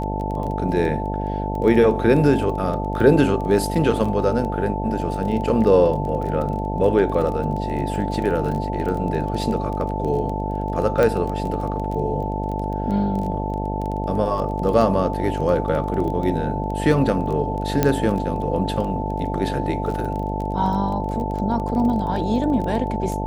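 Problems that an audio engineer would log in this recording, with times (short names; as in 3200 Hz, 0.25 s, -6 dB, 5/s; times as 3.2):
buzz 50 Hz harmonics 15 -26 dBFS
crackle 18/s -27 dBFS
tone 880 Hz -28 dBFS
11.03 pop -8 dBFS
17.83 pop -4 dBFS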